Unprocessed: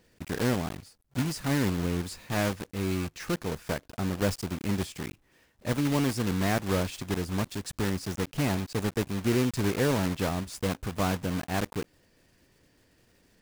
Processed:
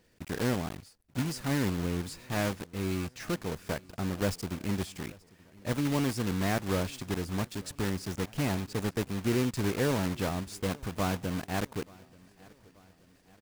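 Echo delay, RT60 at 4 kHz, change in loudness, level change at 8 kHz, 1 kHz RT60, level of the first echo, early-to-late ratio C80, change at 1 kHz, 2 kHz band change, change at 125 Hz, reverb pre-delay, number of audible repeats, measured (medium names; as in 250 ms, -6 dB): 881 ms, no reverb, -2.5 dB, -2.5 dB, no reverb, -24.0 dB, no reverb, -2.5 dB, -2.5 dB, -2.5 dB, no reverb, 2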